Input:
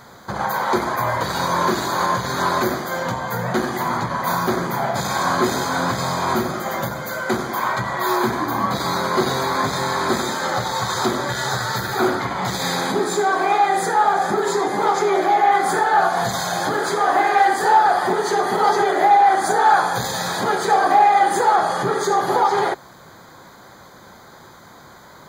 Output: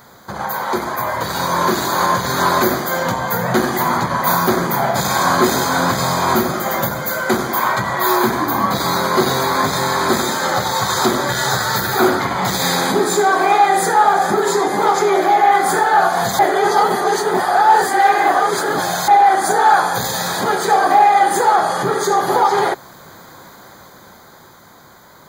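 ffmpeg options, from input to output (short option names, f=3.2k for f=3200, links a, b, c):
-filter_complex "[0:a]asplit=3[a][b][c];[a]atrim=end=16.392[d];[b]atrim=start=16.388:end=19.082,asetpts=PTS-STARTPTS,areverse[e];[c]atrim=start=19.078[f];[d][e]acrossfade=d=0.004:c1=hsin:c2=hsin[g];[g][f]acrossfade=d=0.004:c1=hsin:c2=hsin,highshelf=f=12k:g=11.5,bandreject=f=60:t=h:w=6,bandreject=f=120:t=h:w=6,dynaudnorm=f=100:g=31:m=11.5dB,volume=-1dB"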